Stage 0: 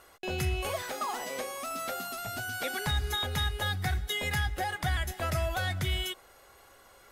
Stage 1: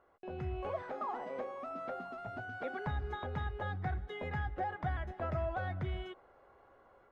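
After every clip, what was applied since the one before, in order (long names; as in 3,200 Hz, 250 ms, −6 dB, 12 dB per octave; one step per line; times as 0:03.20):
low-pass filter 1,100 Hz 12 dB per octave
low-shelf EQ 110 Hz −7 dB
automatic gain control gain up to 6 dB
level −8 dB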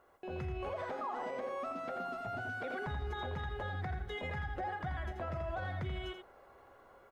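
high-shelf EQ 3,900 Hz +9.5 dB
single-tap delay 83 ms −7 dB
brickwall limiter −33 dBFS, peak gain reduction 9 dB
level +2 dB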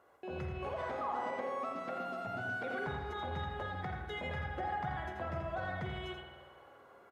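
high-pass filter 94 Hz 12 dB per octave
spring reverb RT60 1.4 s, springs 49 ms, chirp 25 ms, DRR 3.5 dB
downsampling to 32,000 Hz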